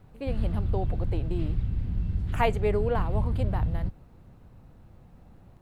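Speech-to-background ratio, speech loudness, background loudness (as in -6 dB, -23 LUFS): -1.5 dB, -32.5 LUFS, -31.0 LUFS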